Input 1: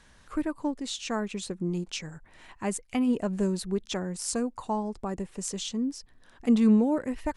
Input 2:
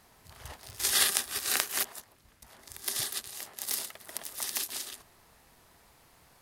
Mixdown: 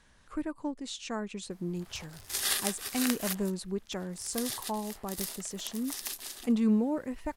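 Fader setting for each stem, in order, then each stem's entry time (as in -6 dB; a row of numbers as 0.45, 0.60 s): -5.0, -4.5 dB; 0.00, 1.50 s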